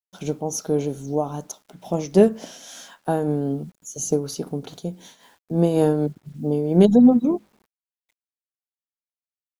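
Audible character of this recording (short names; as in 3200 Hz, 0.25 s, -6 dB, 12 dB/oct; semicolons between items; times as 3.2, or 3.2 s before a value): a quantiser's noise floor 10-bit, dither none; noise-modulated level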